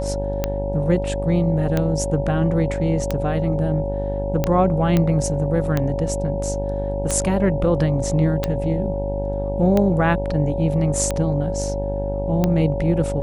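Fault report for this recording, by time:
mains buzz 50 Hz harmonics 19 −26 dBFS
scratch tick 45 rpm −7 dBFS
whistle 560 Hz −25 dBFS
0:04.97: click −7 dBFS

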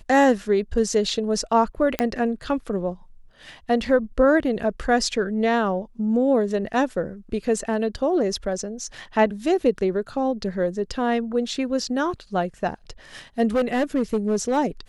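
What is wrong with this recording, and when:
0:01.99: click −6 dBFS
0:13.47–0:14.58: clipping −16.5 dBFS

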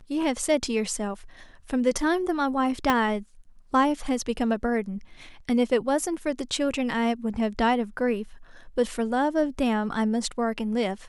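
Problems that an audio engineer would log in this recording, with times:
0:02.90: click −8 dBFS

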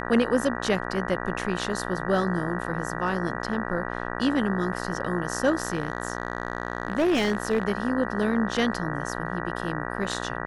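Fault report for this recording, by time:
mains buzz 60 Hz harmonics 32 −32 dBFS
0:05.57–0:07.63: clipping −18 dBFS

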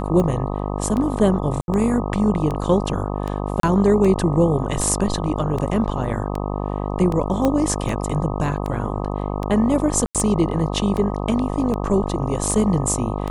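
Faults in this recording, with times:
mains buzz 50 Hz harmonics 25 −25 dBFS
scratch tick 78 rpm −14 dBFS
0:01.61–0:01.68: drop-out 71 ms
0:03.60–0:03.63: drop-out 33 ms
0:07.45: click −8 dBFS
0:10.06–0:10.15: drop-out 87 ms

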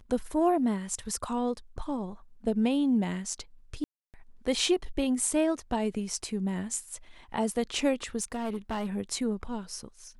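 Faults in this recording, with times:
0:03.84–0:04.14: drop-out 298 ms
0:08.22–0:08.96: clipping −28 dBFS

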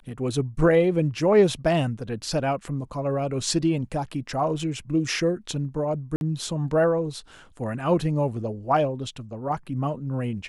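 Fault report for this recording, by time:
0:06.16–0:06.21: drop-out 51 ms

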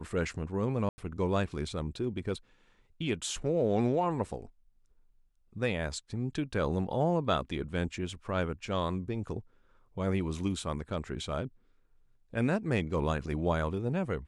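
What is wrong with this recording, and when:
0:00.89–0:00.98: drop-out 90 ms

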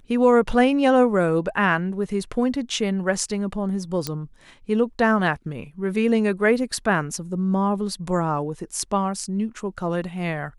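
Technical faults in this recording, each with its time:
0:04.07: click −10 dBFS

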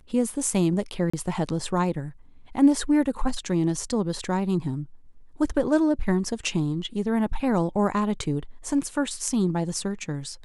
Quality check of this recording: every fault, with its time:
0:01.10–0:01.14: drop-out 35 ms

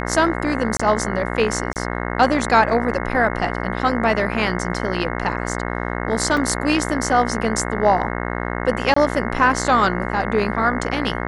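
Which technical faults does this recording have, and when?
mains buzz 60 Hz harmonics 36 −25 dBFS
0:00.77–0:00.80: drop-out 25 ms
0:01.73–0:01.76: drop-out 28 ms
0:06.37: drop-out 3.4 ms
0:08.94–0:08.96: drop-out 24 ms

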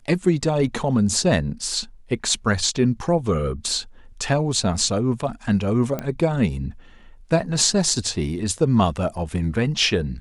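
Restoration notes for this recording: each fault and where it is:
0:05.99: click −13 dBFS

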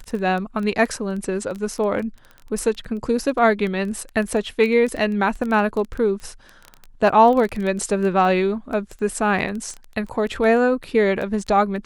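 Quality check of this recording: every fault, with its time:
surface crackle 10 per second −25 dBFS

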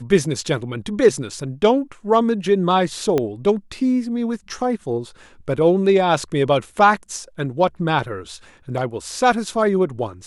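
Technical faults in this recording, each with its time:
0:03.18: click −8 dBFS

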